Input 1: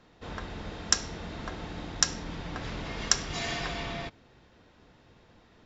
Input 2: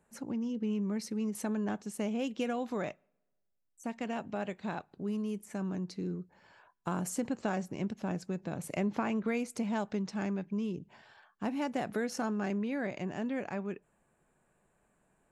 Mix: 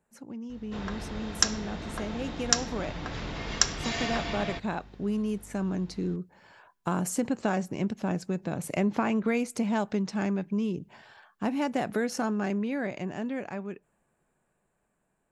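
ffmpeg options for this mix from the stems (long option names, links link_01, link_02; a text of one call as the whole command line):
ffmpeg -i stem1.wav -i stem2.wav -filter_complex "[0:a]aeval=exprs='val(0)+0.00282*(sin(2*PI*50*n/s)+sin(2*PI*2*50*n/s)/2+sin(2*PI*3*50*n/s)/3+sin(2*PI*4*50*n/s)/4+sin(2*PI*5*50*n/s)/5)':channel_layout=same,adelay=500,volume=1dB[link_01];[1:a]dynaudnorm=framelen=860:gausssize=7:maxgain=10dB,volume=-4.5dB[link_02];[link_01][link_02]amix=inputs=2:normalize=0" out.wav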